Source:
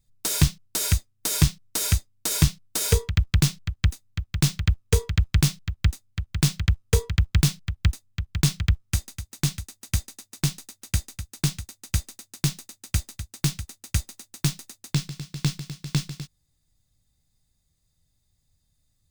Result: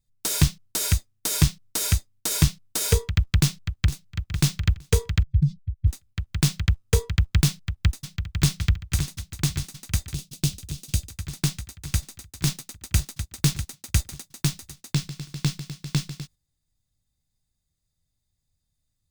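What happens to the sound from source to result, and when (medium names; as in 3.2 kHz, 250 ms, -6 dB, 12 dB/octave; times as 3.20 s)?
3.38–4.30 s: echo throw 460 ms, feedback 40%, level -14.5 dB
5.23–5.87 s: spectral contrast enhancement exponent 2.4
7.46–8.58 s: echo throw 570 ms, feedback 80%, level -9 dB
10.13–11.10 s: high-order bell 1.3 kHz -8.5 dB
12.47–14.23 s: waveshaping leveller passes 1
whole clip: gate -48 dBFS, range -7 dB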